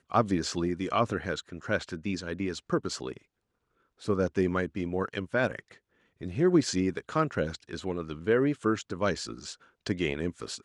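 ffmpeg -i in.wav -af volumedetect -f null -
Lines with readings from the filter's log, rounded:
mean_volume: -30.4 dB
max_volume: -9.1 dB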